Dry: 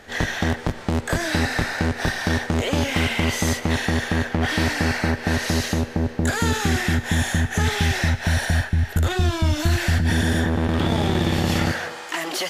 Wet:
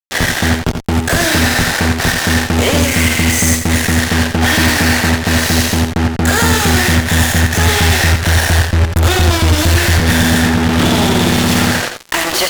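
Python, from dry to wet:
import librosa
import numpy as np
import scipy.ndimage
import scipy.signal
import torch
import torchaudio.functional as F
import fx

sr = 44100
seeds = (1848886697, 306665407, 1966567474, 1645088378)

p1 = fx.cheby_harmonics(x, sr, harmonics=(3,), levels_db=(-14,), full_scale_db=-8.5)
p2 = fx.graphic_eq(p1, sr, hz=(1000, 2000, 4000, 8000), db=(-10, 3, -9, 8), at=(2.8, 4.0))
p3 = fx.fuzz(p2, sr, gain_db=38.0, gate_db=-34.0)
p4 = p3 + fx.echo_multitap(p3, sr, ms=(69, 74, 86), db=(-16.5, -18.5, -7.5), dry=0)
y = p4 * 10.0 ** (5.0 / 20.0)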